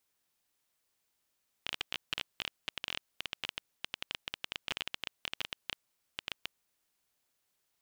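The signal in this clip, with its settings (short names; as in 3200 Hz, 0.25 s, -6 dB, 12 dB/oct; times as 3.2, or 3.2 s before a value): random clicks 14/s -17 dBFS 4.97 s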